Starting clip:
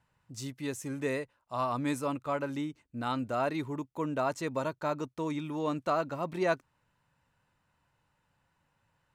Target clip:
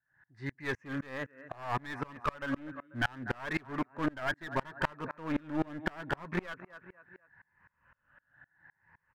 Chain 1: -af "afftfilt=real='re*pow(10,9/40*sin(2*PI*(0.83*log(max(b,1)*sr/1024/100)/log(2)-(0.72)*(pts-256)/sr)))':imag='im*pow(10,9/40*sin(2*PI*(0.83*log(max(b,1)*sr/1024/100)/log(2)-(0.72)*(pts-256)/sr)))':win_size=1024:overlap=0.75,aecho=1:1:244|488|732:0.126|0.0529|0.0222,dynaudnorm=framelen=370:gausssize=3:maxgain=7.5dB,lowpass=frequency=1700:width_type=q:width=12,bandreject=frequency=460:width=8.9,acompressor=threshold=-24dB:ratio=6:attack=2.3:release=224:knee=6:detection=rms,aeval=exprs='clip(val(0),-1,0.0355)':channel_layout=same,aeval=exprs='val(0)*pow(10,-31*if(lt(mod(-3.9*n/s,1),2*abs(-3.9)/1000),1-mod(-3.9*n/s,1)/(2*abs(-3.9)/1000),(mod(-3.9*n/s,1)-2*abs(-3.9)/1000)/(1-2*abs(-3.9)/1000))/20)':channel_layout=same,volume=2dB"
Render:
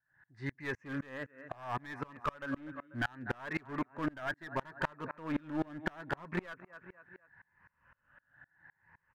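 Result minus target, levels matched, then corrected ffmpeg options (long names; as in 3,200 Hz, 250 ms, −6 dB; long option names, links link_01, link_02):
downward compressor: peak gain reduction +5 dB
-af "afftfilt=real='re*pow(10,9/40*sin(2*PI*(0.83*log(max(b,1)*sr/1024/100)/log(2)-(0.72)*(pts-256)/sr)))':imag='im*pow(10,9/40*sin(2*PI*(0.83*log(max(b,1)*sr/1024/100)/log(2)-(0.72)*(pts-256)/sr)))':win_size=1024:overlap=0.75,aecho=1:1:244|488|732:0.126|0.0529|0.0222,dynaudnorm=framelen=370:gausssize=3:maxgain=7.5dB,lowpass=frequency=1700:width_type=q:width=12,bandreject=frequency=460:width=8.9,acompressor=threshold=-18dB:ratio=6:attack=2.3:release=224:knee=6:detection=rms,aeval=exprs='clip(val(0),-1,0.0355)':channel_layout=same,aeval=exprs='val(0)*pow(10,-31*if(lt(mod(-3.9*n/s,1),2*abs(-3.9)/1000),1-mod(-3.9*n/s,1)/(2*abs(-3.9)/1000),(mod(-3.9*n/s,1)-2*abs(-3.9)/1000)/(1-2*abs(-3.9)/1000))/20)':channel_layout=same,volume=2dB"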